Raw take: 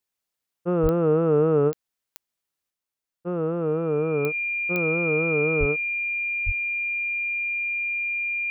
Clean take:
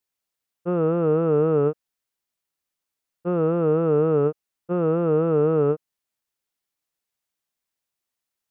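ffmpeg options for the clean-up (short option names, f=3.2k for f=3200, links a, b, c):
-filter_complex "[0:a]adeclick=t=4,bandreject=f=2.4k:w=30,asplit=3[a][b][c];[a]afade=t=out:st=0.82:d=0.02[d];[b]highpass=f=140:w=0.5412,highpass=f=140:w=1.3066,afade=t=in:st=0.82:d=0.02,afade=t=out:st=0.94:d=0.02[e];[c]afade=t=in:st=0.94:d=0.02[f];[d][e][f]amix=inputs=3:normalize=0,asplit=3[g][h][i];[g]afade=t=out:st=5.59:d=0.02[j];[h]highpass=f=140:w=0.5412,highpass=f=140:w=1.3066,afade=t=in:st=5.59:d=0.02,afade=t=out:st=5.71:d=0.02[k];[i]afade=t=in:st=5.71:d=0.02[l];[j][k][l]amix=inputs=3:normalize=0,asplit=3[m][n][o];[m]afade=t=out:st=6.45:d=0.02[p];[n]highpass=f=140:w=0.5412,highpass=f=140:w=1.3066,afade=t=in:st=6.45:d=0.02,afade=t=out:st=6.57:d=0.02[q];[o]afade=t=in:st=6.57:d=0.02[r];[p][q][r]amix=inputs=3:normalize=0,asetnsamples=n=441:p=0,asendcmd='2.7 volume volume 4.5dB',volume=0dB"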